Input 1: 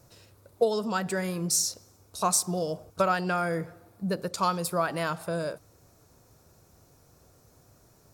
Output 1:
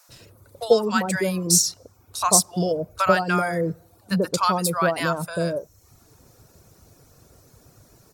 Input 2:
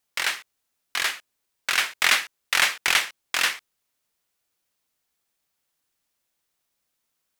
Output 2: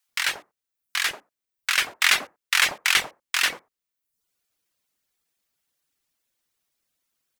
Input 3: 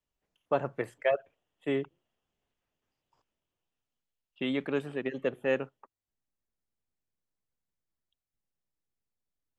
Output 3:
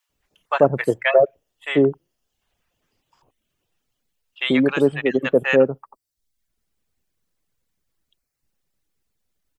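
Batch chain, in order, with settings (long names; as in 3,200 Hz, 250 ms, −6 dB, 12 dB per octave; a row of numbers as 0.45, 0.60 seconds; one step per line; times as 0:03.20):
reverb reduction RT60 0.7 s
multiband delay without the direct sound highs, lows 90 ms, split 850 Hz
normalise the peak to −1.5 dBFS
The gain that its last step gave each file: +8.0, +1.5, +15.0 decibels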